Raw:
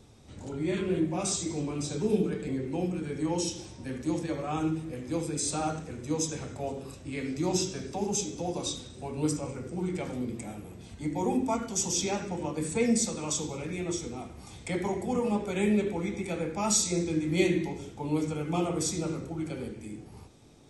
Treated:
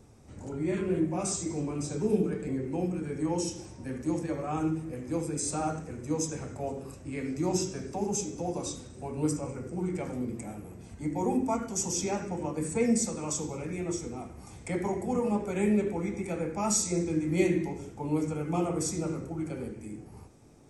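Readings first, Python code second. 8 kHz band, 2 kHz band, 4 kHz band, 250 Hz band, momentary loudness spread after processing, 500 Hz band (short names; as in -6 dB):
-2.0 dB, -3.0 dB, -6.0 dB, 0.0 dB, 12 LU, 0.0 dB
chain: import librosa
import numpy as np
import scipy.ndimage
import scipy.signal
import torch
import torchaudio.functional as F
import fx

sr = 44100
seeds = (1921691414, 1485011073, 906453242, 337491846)

y = fx.peak_eq(x, sr, hz=3600.0, db=-11.5, octaves=0.79)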